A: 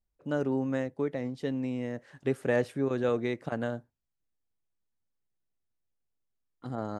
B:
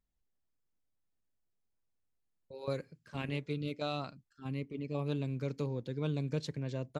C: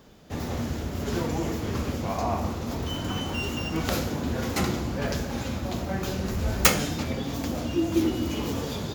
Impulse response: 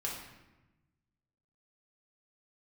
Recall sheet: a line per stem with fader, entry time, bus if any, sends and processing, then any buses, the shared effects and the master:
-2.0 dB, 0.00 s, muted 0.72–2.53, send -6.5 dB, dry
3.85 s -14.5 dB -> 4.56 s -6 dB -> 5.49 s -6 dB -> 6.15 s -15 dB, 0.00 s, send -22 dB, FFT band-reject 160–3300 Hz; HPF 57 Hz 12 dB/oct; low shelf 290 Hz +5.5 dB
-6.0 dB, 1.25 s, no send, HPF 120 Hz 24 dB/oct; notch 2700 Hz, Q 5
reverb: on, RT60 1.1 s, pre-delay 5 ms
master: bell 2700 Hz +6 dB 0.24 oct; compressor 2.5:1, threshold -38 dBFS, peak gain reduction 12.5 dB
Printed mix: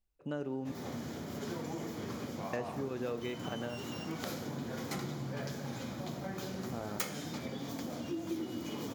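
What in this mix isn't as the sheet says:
stem C: entry 1.25 s -> 0.35 s; reverb return -6.5 dB

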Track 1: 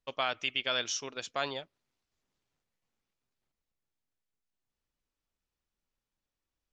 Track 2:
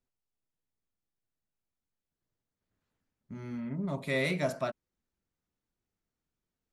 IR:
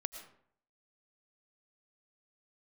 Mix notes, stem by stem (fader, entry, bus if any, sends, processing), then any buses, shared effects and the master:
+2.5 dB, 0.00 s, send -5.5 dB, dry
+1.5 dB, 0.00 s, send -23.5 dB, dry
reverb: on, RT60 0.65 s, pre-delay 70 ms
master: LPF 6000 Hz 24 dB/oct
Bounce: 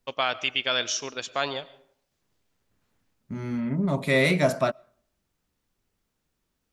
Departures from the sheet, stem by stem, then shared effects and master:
stem 2 +1.5 dB -> +8.5 dB; master: missing LPF 6000 Hz 24 dB/oct

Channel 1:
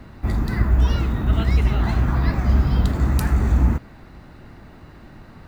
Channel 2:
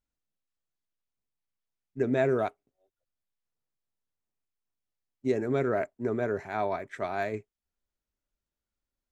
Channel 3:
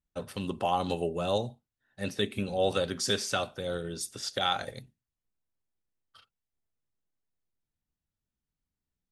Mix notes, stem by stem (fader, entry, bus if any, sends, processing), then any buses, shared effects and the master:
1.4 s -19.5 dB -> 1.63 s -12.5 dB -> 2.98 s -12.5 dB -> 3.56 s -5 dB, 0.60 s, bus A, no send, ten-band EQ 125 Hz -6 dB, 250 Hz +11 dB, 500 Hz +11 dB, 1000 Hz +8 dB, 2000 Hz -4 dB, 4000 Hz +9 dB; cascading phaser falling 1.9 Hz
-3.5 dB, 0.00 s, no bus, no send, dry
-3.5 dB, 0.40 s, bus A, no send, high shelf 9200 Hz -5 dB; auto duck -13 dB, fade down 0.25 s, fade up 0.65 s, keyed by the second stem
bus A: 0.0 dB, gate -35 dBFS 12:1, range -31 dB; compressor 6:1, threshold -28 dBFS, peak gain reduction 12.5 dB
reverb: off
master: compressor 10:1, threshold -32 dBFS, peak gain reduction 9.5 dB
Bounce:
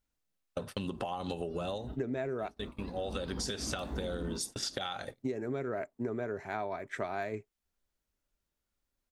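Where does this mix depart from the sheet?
stem 1 -19.5 dB -> -31.0 dB; stem 2 -3.5 dB -> +4.0 dB; stem 3 -3.5 dB -> +6.5 dB

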